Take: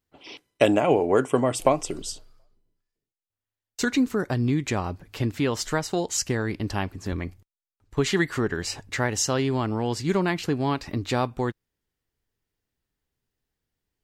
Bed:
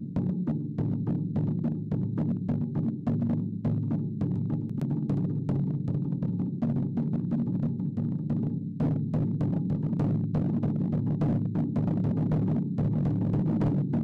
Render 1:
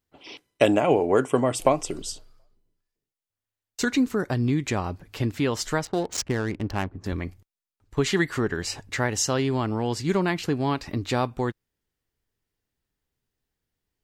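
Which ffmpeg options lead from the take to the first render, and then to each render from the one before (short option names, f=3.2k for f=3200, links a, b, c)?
-filter_complex "[0:a]asettb=1/sr,asplit=3[a][b][c];[a]atrim=end=5.854[d];[b]atrim=start=5.85:end=7.04,asetpts=PTS-STARTPTS,afade=t=in:d=0.004:c=qsin,afade=t=out:st=1.186:d=0.004:c=qsin,adynamicsmooth=sensitivity=5.5:basefreq=820[e];[c]atrim=start=7.036[f];[d][e]acrossfade=d=0.004:c1=hsin:c2=qsin[g];[g][f]acrossfade=d=0.004:c1=qsin:c2=hsin"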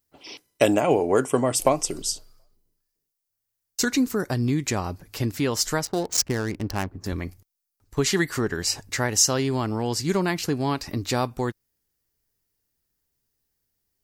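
-af "aexciter=amount=2.7:drive=4.7:freq=4.6k"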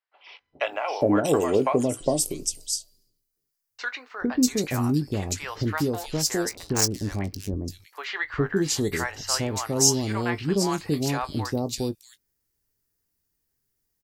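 -filter_complex "[0:a]asplit=2[a][b];[b]adelay=20,volume=-12dB[c];[a][c]amix=inputs=2:normalize=0,acrossover=split=680|3300[d][e][f];[d]adelay=410[g];[f]adelay=640[h];[g][e][h]amix=inputs=3:normalize=0"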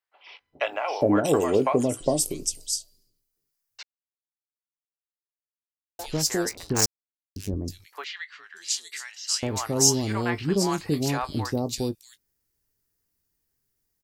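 -filter_complex "[0:a]asettb=1/sr,asplit=3[a][b][c];[a]atrim=end=8.044[d];[b]atrim=start=8.04:end=9.43,asetpts=PTS-STARTPTS,afade=t=in:d=0.004:c=qsin,afade=t=out:st=1.386:d=0.004:c=qsin,asuperpass=centerf=5200:order=4:qfactor=0.73[e];[c]atrim=start=9.426[f];[d][e]acrossfade=d=0.004:c1=hsin:c2=qsin[g];[g][f]acrossfade=d=0.004:c1=qsin:c2=hsin,asplit=5[h][i][j][k][l];[h]atrim=end=3.83,asetpts=PTS-STARTPTS,afade=t=out:st=3.826:d=0.004:c=hsin[m];[i]atrim=start=3.83:end=5.99,asetpts=PTS-STARTPTS,volume=0[n];[j]atrim=start=5.99:end=6.86,asetpts=PTS-STARTPTS,afade=t=in:d=0.004:c=hsin,afade=t=out:st=0.866:d=0.004:c=hsin[o];[k]atrim=start=6.86:end=7.36,asetpts=PTS-STARTPTS,volume=0[p];[l]atrim=start=7.36,asetpts=PTS-STARTPTS,afade=t=in:d=0.004:c=hsin[q];[m][n][o][p][q]concat=n=5:v=0:a=1"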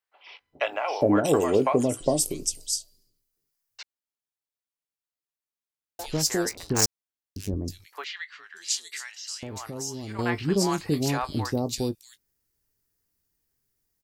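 -filter_complex "[0:a]asettb=1/sr,asplit=3[a][b][c];[a]atrim=end=9.114[d];[b]atrim=start=9.11:end=10.19,asetpts=PTS-STARTPTS,afade=t=in:d=0.004:c=qsin,afade=t=out:st=1.076:d=0.004:c=qsin,acompressor=threshold=-35dB:ratio=3:attack=3.2:release=140:knee=1:detection=peak[e];[c]atrim=start=10.186[f];[d][e]acrossfade=d=0.004:c1=hsin:c2=qsin[g];[g][f]acrossfade=d=0.004:c1=qsin:c2=hsin"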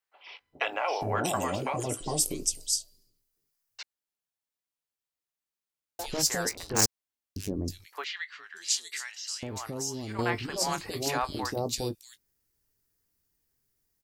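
-af "afftfilt=real='re*lt(hypot(re,im),0.316)':imag='im*lt(hypot(re,im),0.316)':win_size=1024:overlap=0.75,adynamicequalizer=threshold=0.00562:dfrequency=140:dqfactor=1.1:tfrequency=140:tqfactor=1.1:attack=5:release=100:ratio=0.375:range=1.5:mode=cutabove:tftype=bell"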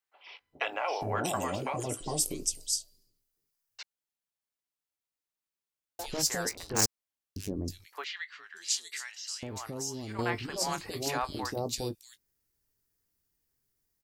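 -af "volume=-2.5dB"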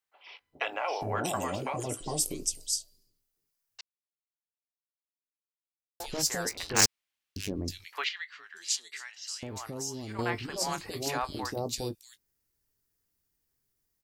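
-filter_complex "[0:a]asettb=1/sr,asplit=3[a][b][c];[a]atrim=end=6.554[d];[b]atrim=start=6.55:end=8.09,asetpts=PTS-STARTPTS,afade=t=in:d=0.004:c=qsin,afade=t=out:st=1.536:d=0.004:c=qsin,equalizer=f=2.6k:w=0.64:g=11[e];[c]atrim=start=8.086[f];[d][e]acrossfade=d=0.004:c1=hsin:c2=qsin[g];[g][f]acrossfade=d=0.004:c1=qsin:c2=hsin,asettb=1/sr,asplit=3[h][i][j];[h]atrim=end=8.764[k];[i]atrim=start=8.76:end=9.22,asetpts=PTS-STARTPTS,afade=t=in:d=0.004:c=qsin,afade=t=out:st=0.456:d=0.004:c=qsin,lowpass=f=3.4k:p=1[l];[j]atrim=start=9.216[m];[k][l]acrossfade=d=0.004:c1=hsin:c2=qsin[n];[n][m]acrossfade=d=0.004:c1=qsin:c2=hsin,asplit=3[o][p][q];[o]atrim=end=3.81,asetpts=PTS-STARTPTS,afade=t=out:st=3.806:d=0.004:c=hsin[r];[p]atrim=start=3.81:end=6,asetpts=PTS-STARTPTS,volume=0[s];[q]atrim=start=6,asetpts=PTS-STARTPTS,afade=t=in:d=0.004:c=hsin[t];[r][s][t]concat=n=3:v=0:a=1"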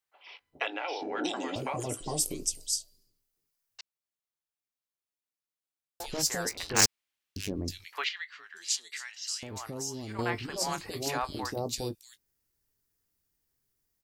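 -filter_complex "[0:a]asettb=1/sr,asplit=3[a][b][c];[a]atrim=end=0.674[d];[b]atrim=start=0.67:end=1.56,asetpts=PTS-STARTPTS,afade=t=in:d=0.004:c=qsin,afade=t=out:st=0.886:d=0.004:c=qsin,highpass=f=260:w=0.5412,highpass=f=260:w=1.3066,equalizer=f=300:t=q:w=4:g=9,equalizer=f=630:t=q:w=4:g=-8,equalizer=f=1.1k:t=q:w=4:g=-10,equalizer=f=3.7k:t=q:w=4:g=9,lowpass=f=5.8k:w=0.5412,lowpass=f=5.8k:w=1.3066[e];[c]atrim=start=1.556[f];[d][e]acrossfade=d=0.004:c1=hsin:c2=qsin[g];[g][f]acrossfade=d=0.004:c1=qsin:c2=hsin,asettb=1/sr,asplit=3[h][i][j];[h]atrim=end=8.904[k];[i]atrim=start=8.9:end=9.51,asetpts=PTS-STARTPTS,afade=t=in:d=0.004:c=qsin,afade=t=out:st=0.606:d=0.004:c=qsin,tiltshelf=f=1.3k:g=-4[l];[j]atrim=start=9.506[m];[k][l]acrossfade=d=0.004:c1=hsin:c2=qsin[n];[n][m]acrossfade=d=0.004:c1=qsin:c2=hsin"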